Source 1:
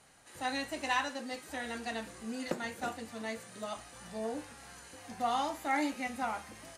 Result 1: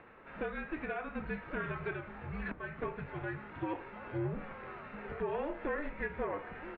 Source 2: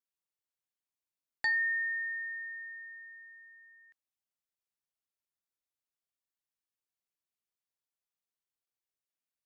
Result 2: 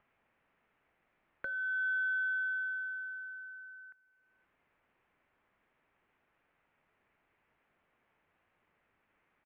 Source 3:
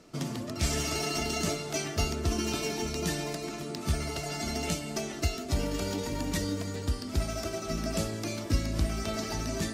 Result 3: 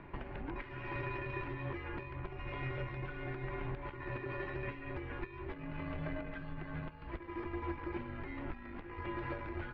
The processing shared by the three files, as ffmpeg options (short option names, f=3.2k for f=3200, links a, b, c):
-filter_complex "[0:a]bandreject=f=60:t=h:w=6,bandreject=f=120:t=h:w=6,bandreject=f=180:t=h:w=6,bandreject=f=240:t=h:w=6,bandreject=f=300:t=h:w=6,bandreject=f=360:t=h:w=6,bandreject=f=420:t=h:w=6,acompressor=threshold=-38dB:ratio=12,alimiter=level_in=8.5dB:limit=-24dB:level=0:latency=1:release=439,volume=-8.5dB,acompressor=mode=upward:threshold=-60dB:ratio=2.5,aeval=exprs='(tanh(56.2*val(0)+0.55)-tanh(0.55))/56.2':c=same,asplit=2[a][b];[b]aecho=0:1:522:0.0668[c];[a][c]amix=inputs=2:normalize=0,highpass=f=310:t=q:w=0.5412,highpass=f=310:t=q:w=1.307,lowpass=f=2.7k:t=q:w=0.5176,lowpass=f=2.7k:t=q:w=0.7071,lowpass=f=2.7k:t=q:w=1.932,afreqshift=-310,volume=10.5dB"